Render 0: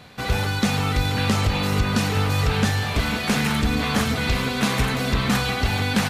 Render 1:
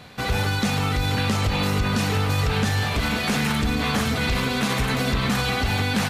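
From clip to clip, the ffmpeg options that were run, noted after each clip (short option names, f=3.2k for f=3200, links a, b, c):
-af "alimiter=limit=-15.5dB:level=0:latency=1:release=40,volume=1.5dB"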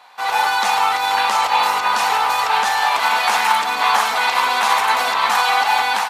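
-af "dynaudnorm=f=170:g=3:m=11dB,highpass=f=890:t=q:w=4.9,volume=-5dB"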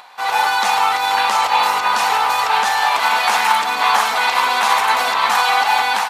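-af "acompressor=mode=upward:threshold=-39dB:ratio=2.5,volume=1dB"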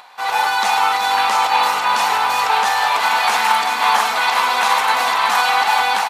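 -af "aecho=1:1:377:0.422,volume=-1dB"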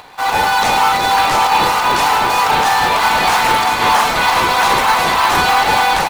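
-filter_complex "[0:a]asplit=2[a][b];[b]acrusher=samples=22:mix=1:aa=0.000001:lfo=1:lforange=22:lforate=3.2,volume=-7.5dB[c];[a][c]amix=inputs=2:normalize=0,asoftclip=type=tanh:threshold=-8.5dB,volume=3.5dB"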